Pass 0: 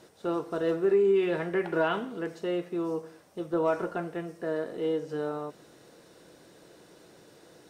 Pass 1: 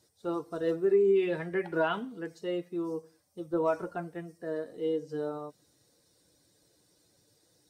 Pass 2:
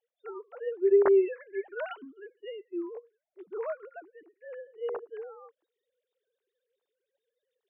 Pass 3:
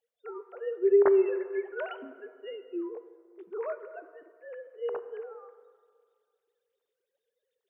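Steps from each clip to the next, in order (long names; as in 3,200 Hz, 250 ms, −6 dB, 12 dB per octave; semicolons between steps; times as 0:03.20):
spectral dynamics exaggerated over time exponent 1.5
three sine waves on the formant tracks
dense smooth reverb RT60 2.1 s, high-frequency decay 0.45×, DRR 11.5 dB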